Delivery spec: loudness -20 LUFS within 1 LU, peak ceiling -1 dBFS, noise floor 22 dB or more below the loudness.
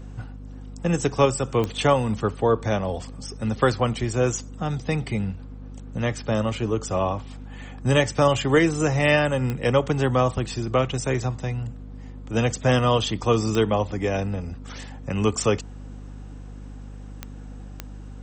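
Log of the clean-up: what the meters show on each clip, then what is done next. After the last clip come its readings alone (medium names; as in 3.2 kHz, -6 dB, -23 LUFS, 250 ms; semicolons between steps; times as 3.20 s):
clicks found 5; hum 50 Hz; highest harmonic 250 Hz; hum level -36 dBFS; loudness -23.5 LUFS; peak level -7.0 dBFS; loudness target -20.0 LUFS
-> de-click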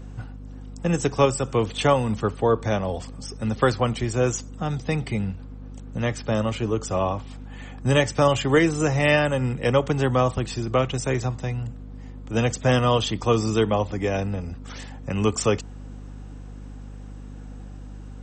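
clicks found 0; hum 50 Hz; highest harmonic 250 Hz; hum level -36 dBFS
-> de-hum 50 Hz, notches 5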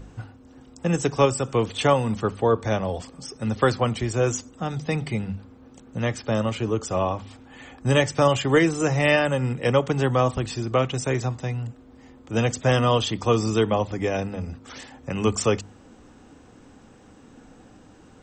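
hum not found; loudness -24.0 LUFS; peak level -7.5 dBFS; loudness target -20.0 LUFS
-> trim +4 dB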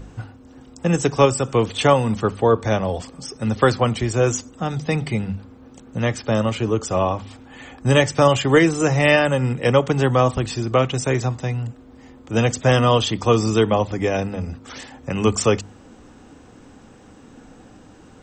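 loudness -20.0 LUFS; peak level -3.5 dBFS; noise floor -47 dBFS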